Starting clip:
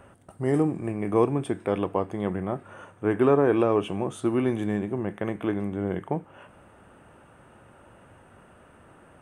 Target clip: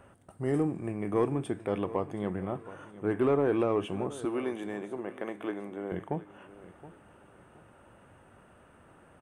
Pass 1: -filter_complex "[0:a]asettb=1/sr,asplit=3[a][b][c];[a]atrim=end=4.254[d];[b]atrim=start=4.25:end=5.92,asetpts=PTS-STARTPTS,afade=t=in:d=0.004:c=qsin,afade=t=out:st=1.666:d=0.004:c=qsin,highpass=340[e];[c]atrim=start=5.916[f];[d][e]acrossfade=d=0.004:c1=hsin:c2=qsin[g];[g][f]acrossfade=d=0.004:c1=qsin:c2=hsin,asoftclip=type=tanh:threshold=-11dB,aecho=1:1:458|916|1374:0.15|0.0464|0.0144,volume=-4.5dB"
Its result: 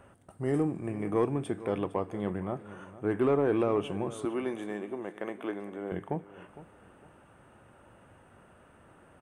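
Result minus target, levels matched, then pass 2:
echo 0.264 s early
-filter_complex "[0:a]asettb=1/sr,asplit=3[a][b][c];[a]atrim=end=4.254[d];[b]atrim=start=4.25:end=5.92,asetpts=PTS-STARTPTS,afade=t=in:d=0.004:c=qsin,afade=t=out:st=1.666:d=0.004:c=qsin,highpass=340[e];[c]atrim=start=5.916[f];[d][e]acrossfade=d=0.004:c1=hsin:c2=qsin[g];[g][f]acrossfade=d=0.004:c1=qsin:c2=hsin,asoftclip=type=tanh:threshold=-11dB,aecho=1:1:722|1444|2166:0.15|0.0464|0.0144,volume=-4.5dB"

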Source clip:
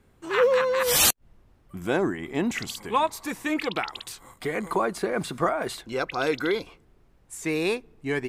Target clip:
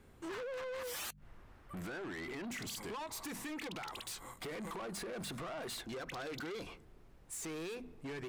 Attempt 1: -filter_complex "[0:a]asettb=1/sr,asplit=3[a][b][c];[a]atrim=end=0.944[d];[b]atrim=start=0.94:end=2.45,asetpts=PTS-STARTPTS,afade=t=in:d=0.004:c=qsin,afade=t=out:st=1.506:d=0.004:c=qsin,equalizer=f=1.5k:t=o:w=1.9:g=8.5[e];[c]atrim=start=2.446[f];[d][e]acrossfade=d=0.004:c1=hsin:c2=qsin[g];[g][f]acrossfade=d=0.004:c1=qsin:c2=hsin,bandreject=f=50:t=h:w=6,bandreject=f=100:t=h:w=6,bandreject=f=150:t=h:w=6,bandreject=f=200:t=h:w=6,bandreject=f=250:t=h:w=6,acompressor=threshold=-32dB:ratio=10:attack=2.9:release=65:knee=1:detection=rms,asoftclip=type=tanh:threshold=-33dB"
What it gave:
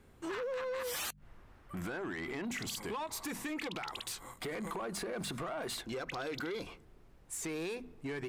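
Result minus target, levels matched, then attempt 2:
soft clip: distortion -6 dB
-filter_complex "[0:a]asettb=1/sr,asplit=3[a][b][c];[a]atrim=end=0.944[d];[b]atrim=start=0.94:end=2.45,asetpts=PTS-STARTPTS,afade=t=in:d=0.004:c=qsin,afade=t=out:st=1.506:d=0.004:c=qsin,equalizer=f=1.5k:t=o:w=1.9:g=8.5[e];[c]atrim=start=2.446[f];[d][e]acrossfade=d=0.004:c1=hsin:c2=qsin[g];[g][f]acrossfade=d=0.004:c1=qsin:c2=hsin,bandreject=f=50:t=h:w=6,bandreject=f=100:t=h:w=6,bandreject=f=150:t=h:w=6,bandreject=f=200:t=h:w=6,bandreject=f=250:t=h:w=6,acompressor=threshold=-32dB:ratio=10:attack=2.9:release=65:knee=1:detection=rms,asoftclip=type=tanh:threshold=-40dB"

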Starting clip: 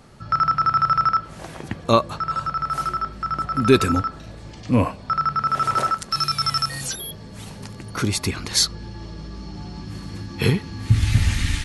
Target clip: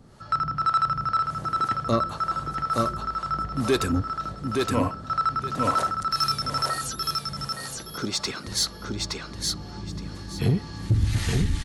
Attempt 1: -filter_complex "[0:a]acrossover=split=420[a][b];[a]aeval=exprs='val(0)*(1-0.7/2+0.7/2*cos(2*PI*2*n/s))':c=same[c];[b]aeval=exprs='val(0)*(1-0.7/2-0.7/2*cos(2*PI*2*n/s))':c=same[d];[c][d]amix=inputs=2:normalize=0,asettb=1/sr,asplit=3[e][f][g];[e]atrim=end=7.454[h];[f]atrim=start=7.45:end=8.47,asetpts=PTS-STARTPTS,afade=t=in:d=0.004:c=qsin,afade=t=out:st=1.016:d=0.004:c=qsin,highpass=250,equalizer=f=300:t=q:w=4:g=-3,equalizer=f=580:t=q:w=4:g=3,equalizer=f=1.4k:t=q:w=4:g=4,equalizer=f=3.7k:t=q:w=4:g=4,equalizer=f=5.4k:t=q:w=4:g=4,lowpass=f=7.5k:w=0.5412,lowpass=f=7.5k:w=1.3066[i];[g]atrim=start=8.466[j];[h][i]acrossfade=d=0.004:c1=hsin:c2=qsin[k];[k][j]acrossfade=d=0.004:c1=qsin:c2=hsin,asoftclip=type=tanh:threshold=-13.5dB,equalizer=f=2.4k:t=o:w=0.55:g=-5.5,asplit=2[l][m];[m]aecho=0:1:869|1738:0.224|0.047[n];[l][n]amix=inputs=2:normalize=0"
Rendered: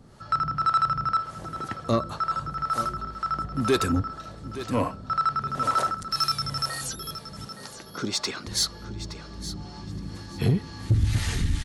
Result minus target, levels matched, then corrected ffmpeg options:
echo-to-direct -10 dB
-filter_complex "[0:a]acrossover=split=420[a][b];[a]aeval=exprs='val(0)*(1-0.7/2+0.7/2*cos(2*PI*2*n/s))':c=same[c];[b]aeval=exprs='val(0)*(1-0.7/2-0.7/2*cos(2*PI*2*n/s))':c=same[d];[c][d]amix=inputs=2:normalize=0,asettb=1/sr,asplit=3[e][f][g];[e]atrim=end=7.454[h];[f]atrim=start=7.45:end=8.47,asetpts=PTS-STARTPTS,afade=t=in:d=0.004:c=qsin,afade=t=out:st=1.016:d=0.004:c=qsin,highpass=250,equalizer=f=300:t=q:w=4:g=-3,equalizer=f=580:t=q:w=4:g=3,equalizer=f=1.4k:t=q:w=4:g=4,equalizer=f=3.7k:t=q:w=4:g=4,equalizer=f=5.4k:t=q:w=4:g=4,lowpass=f=7.5k:w=0.5412,lowpass=f=7.5k:w=1.3066[i];[g]atrim=start=8.466[j];[h][i]acrossfade=d=0.004:c1=hsin:c2=qsin[k];[k][j]acrossfade=d=0.004:c1=qsin:c2=hsin,asoftclip=type=tanh:threshold=-13.5dB,equalizer=f=2.4k:t=o:w=0.55:g=-5.5,asplit=2[l][m];[m]aecho=0:1:869|1738|2607:0.708|0.149|0.0312[n];[l][n]amix=inputs=2:normalize=0"

